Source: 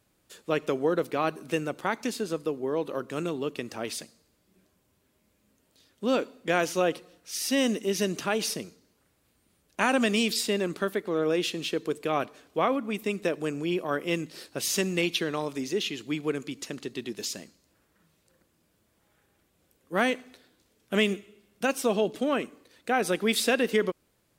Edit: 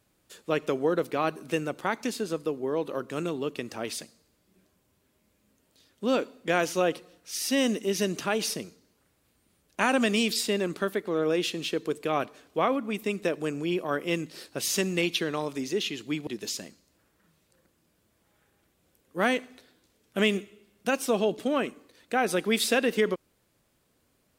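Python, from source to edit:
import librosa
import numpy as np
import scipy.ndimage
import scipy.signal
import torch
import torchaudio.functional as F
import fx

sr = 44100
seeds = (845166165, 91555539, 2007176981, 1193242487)

y = fx.edit(x, sr, fx.cut(start_s=16.27, length_s=0.76), tone=tone)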